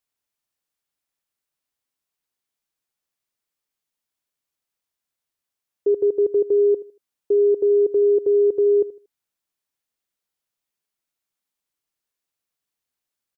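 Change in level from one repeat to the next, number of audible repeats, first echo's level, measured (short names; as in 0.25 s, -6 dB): -11.5 dB, 2, -17.0 dB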